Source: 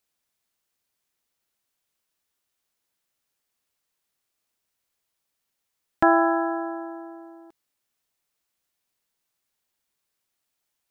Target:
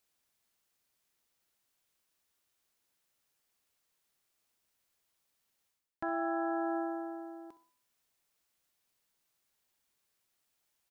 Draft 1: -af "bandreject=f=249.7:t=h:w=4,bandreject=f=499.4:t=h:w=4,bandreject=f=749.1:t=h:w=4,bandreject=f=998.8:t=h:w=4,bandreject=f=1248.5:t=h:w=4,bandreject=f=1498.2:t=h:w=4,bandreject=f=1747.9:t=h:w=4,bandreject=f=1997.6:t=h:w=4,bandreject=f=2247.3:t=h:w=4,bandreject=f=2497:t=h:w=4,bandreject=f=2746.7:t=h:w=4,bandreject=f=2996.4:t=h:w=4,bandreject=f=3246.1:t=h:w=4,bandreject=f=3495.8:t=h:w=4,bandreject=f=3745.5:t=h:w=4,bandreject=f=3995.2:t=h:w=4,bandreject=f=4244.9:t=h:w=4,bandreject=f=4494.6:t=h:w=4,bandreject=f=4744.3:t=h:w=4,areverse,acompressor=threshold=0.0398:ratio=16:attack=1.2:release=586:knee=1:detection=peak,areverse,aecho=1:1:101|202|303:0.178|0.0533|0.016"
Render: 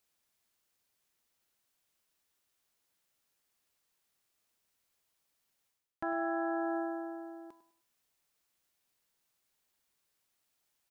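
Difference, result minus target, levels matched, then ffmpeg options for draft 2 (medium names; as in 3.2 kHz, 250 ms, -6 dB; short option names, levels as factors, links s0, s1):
echo 37 ms late
-af "bandreject=f=249.7:t=h:w=4,bandreject=f=499.4:t=h:w=4,bandreject=f=749.1:t=h:w=4,bandreject=f=998.8:t=h:w=4,bandreject=f=1248.5:t=h:w=4,bandreject=f=1498.2:t=h:w=4,bandreject=f=1747.9:t=h:w=4,bandreject=f=1997.6:t=h:w=4,bandreject=f=2247.3:t=h:w=4,bandreject=f=2497:t=h:w=4,bandreject=f=2746.7:t=h:w=4,bandreject=f=2996.4:t=h:w=4,bandreject=f=3246.1:t=h:w=4,bandreject=f=3495.8:t=h:w=4,bandreject=f=3745.5:t=h:w=4,bandreject=f=3995.2:t=h:w=4,bandreject=f=4244.9:t=h:w=4,bandreject=f=4494.6:t=h:w=4,bandreject=f=4744.3:t=h:w=4,areverse,acompressor=threshold=0.0398:ratio=16:attack=1.2:release=586:knee=1:detection=peak,areverse,aecho=1:1:64|128|192:0.178|0.0533|0.016"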